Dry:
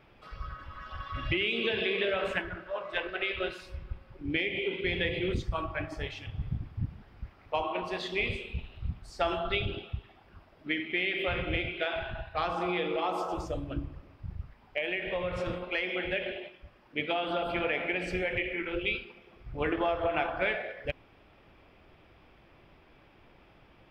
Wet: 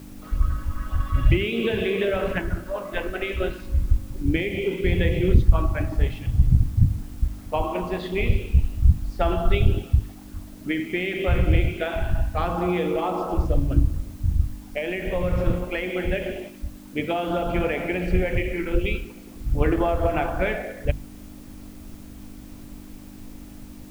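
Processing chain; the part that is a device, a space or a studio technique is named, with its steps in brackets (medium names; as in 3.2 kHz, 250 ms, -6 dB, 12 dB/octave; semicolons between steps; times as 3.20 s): RIAA curve playback; video cassette with head-switching buzz (mains buzz 50 Hz, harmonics 6, -45 dBFS -1 dB/octave; white noise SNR 32 dB); hum notches 50/100/150 Hz; trim +4 dB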